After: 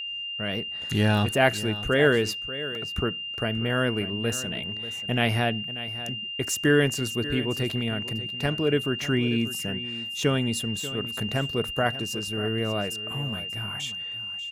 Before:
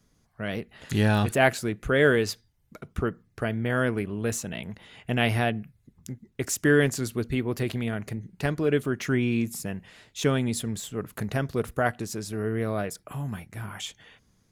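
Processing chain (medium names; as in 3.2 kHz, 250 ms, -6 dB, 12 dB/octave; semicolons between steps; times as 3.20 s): gate with hold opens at -55 dBFS; whistle 2.8 kHz -31 dBFS; delay 588 ms -14.5 dB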